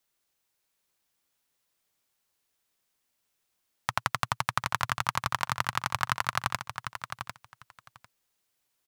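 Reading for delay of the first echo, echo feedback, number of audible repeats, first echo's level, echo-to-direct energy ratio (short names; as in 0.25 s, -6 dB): 0.749 s, 15%, 2, -8.5 dB, -8.5 dB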